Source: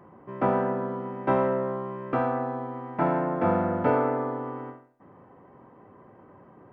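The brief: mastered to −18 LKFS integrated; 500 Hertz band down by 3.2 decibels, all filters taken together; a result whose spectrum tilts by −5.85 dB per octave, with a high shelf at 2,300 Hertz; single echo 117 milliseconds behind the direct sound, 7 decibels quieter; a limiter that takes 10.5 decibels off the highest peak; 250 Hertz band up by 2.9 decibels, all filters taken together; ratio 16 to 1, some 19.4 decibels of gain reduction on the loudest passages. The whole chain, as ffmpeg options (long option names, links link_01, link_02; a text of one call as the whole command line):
ffmpeg -i in.wav -af "equalizer=frequency=250:width_type=o:gain=5,equalizer=frequency=500:width_type=o:gain=-5,highshelf=frequency=2300:gain=-8.5,acompressor=threshold=-39dB:ratio=16,alimiter=level_in=15.5dB:limit=-24dB:level=0:latency=1,volume=-15.5dB,aecho=1:1:117:0.447,volume=30dB" out.wav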